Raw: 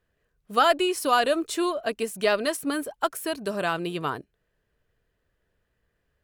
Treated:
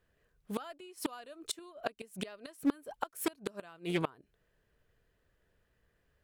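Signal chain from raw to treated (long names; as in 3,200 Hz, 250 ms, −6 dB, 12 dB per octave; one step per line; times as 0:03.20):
gate with flip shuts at −19 dBFS, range −27 dB
highs frequency-modulated by the lows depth 0.3 ms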